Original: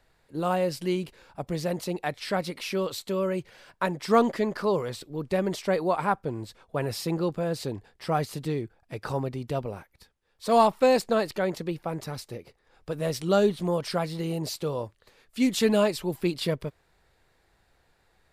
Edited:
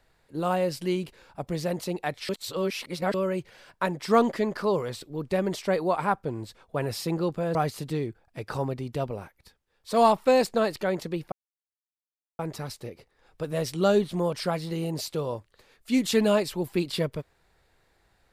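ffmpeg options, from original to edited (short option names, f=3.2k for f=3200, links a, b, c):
-filter_complex "[0:a]asplit=5[a][b][c][d][e];[a]atrim=end=2.292[f];[b]atrim=start=2.288:end=3.142,asetpts=PTS-STARTPTS,areverse[g];[c]atrim=start=3.138:end=7.552[h];[d]atrim=start=8.098:end=11.87,asetpts=PTS-STARTPTS,afade=t=out:st=3.768:d=0.004:c=hsin,apad=pad_dur=1.07[i];[e]atrim=start=11.87,asetpts=PTS-STARTPTS,afade=t=in:d=0.004:c=hsin[j];[f][g]acrossfade=d=0.004:c1=hsin:c2=hsin[k];[k][h]acrossfade=d=0.004:c1=hsin:c2=hsin[l];[i][j]concat=n=2:v=0:a=1[m];[l][m]acrossfade=d=0.004:c1=hsin:c2=hsin"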